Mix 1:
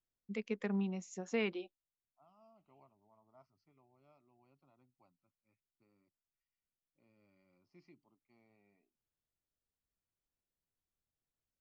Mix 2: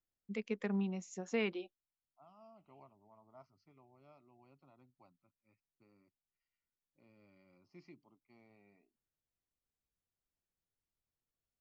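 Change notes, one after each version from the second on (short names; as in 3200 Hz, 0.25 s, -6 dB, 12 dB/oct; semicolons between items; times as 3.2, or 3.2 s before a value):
second voice +5.5 dB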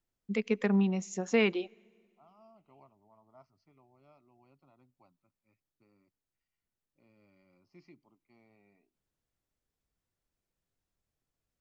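first voice +8.5 dB; reverb: on, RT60 1.9 s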